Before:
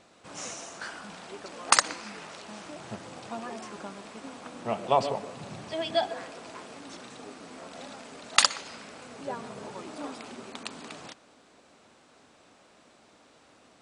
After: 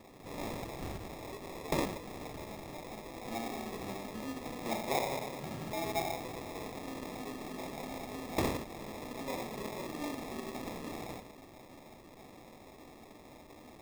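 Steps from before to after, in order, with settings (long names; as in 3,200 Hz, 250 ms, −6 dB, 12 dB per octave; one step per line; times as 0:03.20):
reverb whose tail is shaped and stops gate 200 ms falling, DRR −5 dB
downward compressor 2 to 1, threshold −40 dBFS, peak gain reduction 15.5 dB
0:00.92–0:03.25: high-pass filter 670 Hz 6 dB per octave
sample-rate reduction 1,500 Hz, jitter 0%
level −1 dB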